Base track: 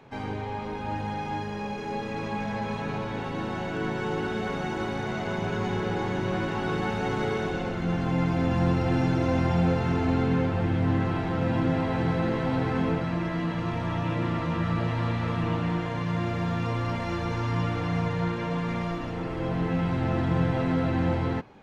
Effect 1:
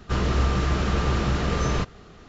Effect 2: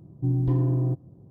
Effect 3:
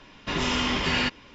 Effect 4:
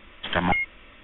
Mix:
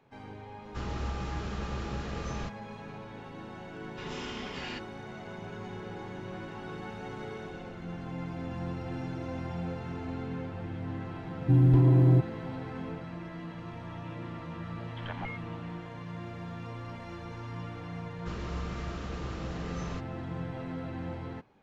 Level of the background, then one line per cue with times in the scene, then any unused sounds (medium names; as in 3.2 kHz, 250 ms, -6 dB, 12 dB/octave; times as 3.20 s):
base track -12.5 dB
0.65 s: add 1 -13 dB
3.70 s: add 3 -15.5 dB
11.26 s: add 2 -13 dB + loudness maximiser +17 dB
14.73 s: add 4 -17.5 dB
18.16 s: add 1 -15 dB